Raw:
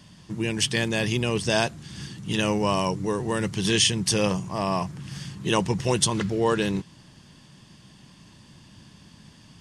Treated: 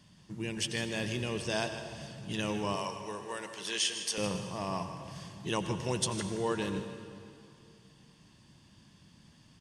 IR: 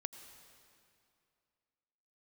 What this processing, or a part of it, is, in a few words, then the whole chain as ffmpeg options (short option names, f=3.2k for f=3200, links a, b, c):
cave: -filter_complex "[0:a]asettb=1/sr,asplit=3[a][b][c];[a]atrim=end=2.764[d];[b]atrim=start=2.76:end=4.18,asetpts=PTS-STARTPTS,afade=t=in:d=0.004:c=qsin,afade=t=out:st=1.416:d=0.004:c=qsin,highpass=540[e];[c]atrim=start=4.176[f];[d][e]acrossfade=d=0.004:c1=hsin:c2=qsin[g];[g][f]acrossfade=d=0.004:c1=qsin:c2=hsin,aecho=1:1:156:0.224[h];[1:a]atrim=start_sample=2205[i];[h][i]afir=irnorm=-1:irlink=0,volume=-7dB"